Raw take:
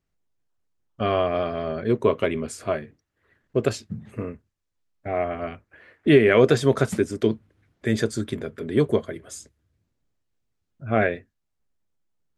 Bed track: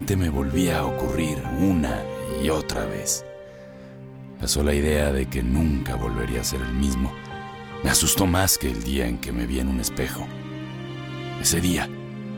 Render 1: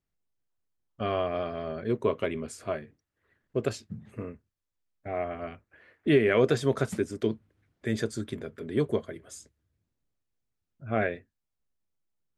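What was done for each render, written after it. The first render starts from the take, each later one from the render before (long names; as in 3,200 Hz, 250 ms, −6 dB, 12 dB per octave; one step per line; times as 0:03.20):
level −6.5 dB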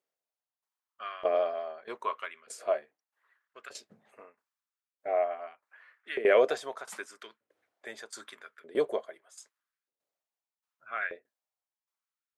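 auto-filter high-pass saw up 0.81 Hz 480–1,500 Hz
shaped tremolo saw down 1.6 Hz, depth 80%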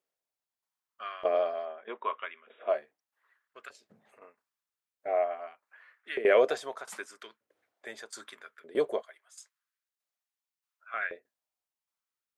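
0:01.65–0:02.70: linear-phase brick-wall band-pass 170–3,800 Hz
0:03.70–0:04.22: downward compressor 8 to 1, threshold −54 dBFS
0:09.02–0:10.94: high-pass filter 1,100 Hz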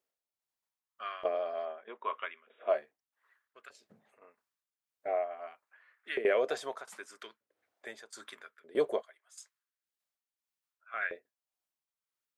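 amplitude tremolo 1.8 Hz, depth 56%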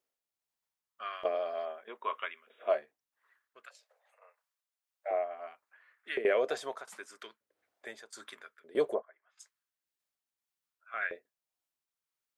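0:01.13–0:02.75: high-shelf EQ 3,800 Hz +7.5 dB
0:03.66–0:05.11: Butterworth high-pass 500 Hz 72 dB per octave
0:08.93–0:09.39: low-pass filter 1,200 Hz → 3,100 Hz 24 dB per octave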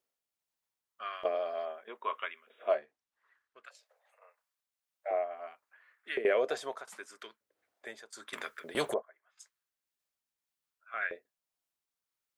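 0:02.74–0:03.67: high-frequency loss of the air 51 metres
0:08.33–0:08.94: every bin compressed towards the loudest bin 2 to 1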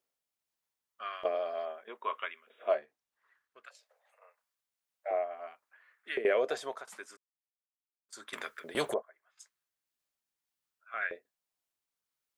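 0:07.17–0:08.09: silence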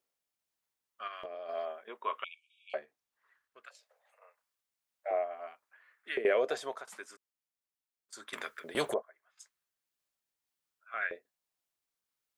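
0:01.07–0:01.49: downward compressor 8 to 1, threshold −39 dBFS
0:02.24–0:02.74: linear-phase brick-wall band-pass 2,200–10,000 Hz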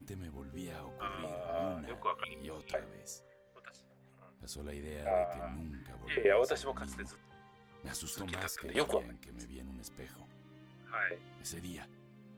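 mix in bed track −23.5 dB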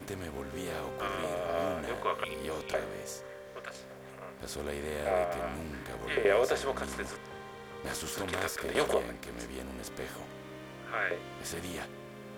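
compressor on every frequency bin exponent 0.6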